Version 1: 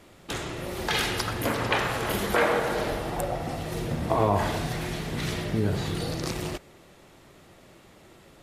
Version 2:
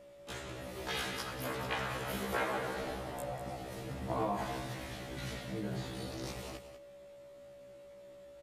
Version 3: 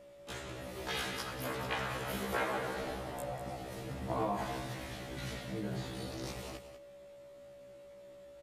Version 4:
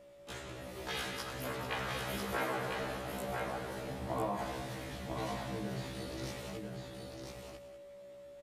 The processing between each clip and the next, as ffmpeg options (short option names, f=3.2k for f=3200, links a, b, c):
-af "aeval=exprs='val(0)+0.00708*sin(2*PI*570*n/s)':c=same,aecho=1:1:193:0.282,afftfilt=real='re*1.73*eq(mod(b,3),0)':imag='im*1.73*eq(mod(b,3),0)':win_size=2048:overlap=0.75,volume=-8.5dB"
-af anull
-af "aecho=1:1:998:0.596,volume=-1.5dB"